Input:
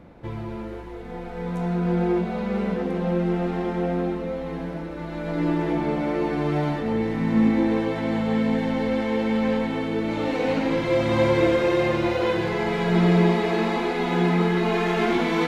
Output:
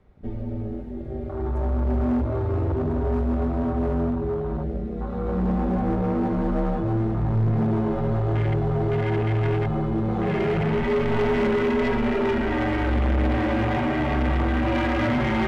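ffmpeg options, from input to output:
-filter_complex "[0:a]afwtdn=0.0251,asplit=2[s0][s1];[s1]volume=14.1,asoftclip=hard,volume=0.0708,volume=0.708[s2];[s0][s2]amix=inputs=2:normalize=0,afreqshift=-110,asoftclip=type=tanh:threshold=0.133"

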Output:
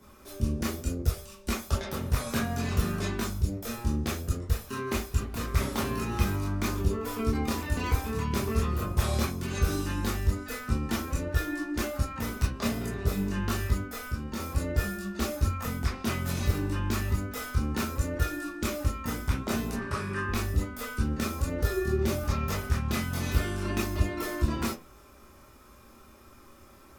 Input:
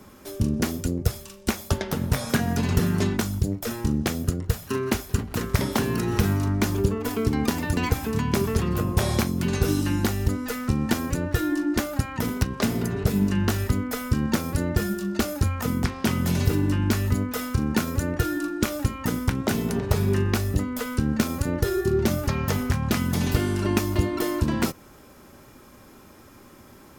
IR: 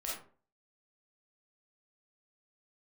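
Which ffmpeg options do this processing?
-filter_complex "[0:a]asplit=3[s0][s1][s2];[s0]afade=t=out:st=13.83:d=0.02[s3];[s1]acompressor=threshold=0.0447:ratio=2.5,afade=t=in:st=13.83:d=0.02,afade=t=out:st=14.37:d=0.02[s4];[s2]afade=t=in:st=14.37:d=0.02[s5];[s3][s4][s5]amix=inputs=3:normalize=0,asettb=1/sr,asplit=3[s6][s7][s8];[s6]atrim=end=19.764[s9];[s7]atrim=start=19.76:end=20.29,asetpts=PTS-STARTPTS,afade=t=in:d=0.004:c=qsin,afade=t=out:st=0.526:d=0.004:c=qsin,highpass=130,equalizer=f=460:t=q:w=4:g=-8,equalizer=f=730:t=q:w=4:g=-9,equalizer=f=1100:t=q:w=4:g=6,equalizer=f=1600:t=q:w=4:g=9,equalizer=f=3800:t=q:w=4:g=-5,equalizer=f=6600:t=q:w=4:g=-7,lowpass=f=9600:w=0.5412,lowpass=f=9600:w=1.3066[s10];[s8]atrim=start=20.286[s11];[s9][s10]acrossfade=d=0.004:c1=hsin:c2=qsin[s12];[s12][s11]acrossfade=d=0.004:c1=qsin:c2=hsin[s13];[1:a]atrim=start_sample=2205,asetrate=83790,aresample=44100[s14];[s13][s14]afir=irnorm=-1:irlink=0"

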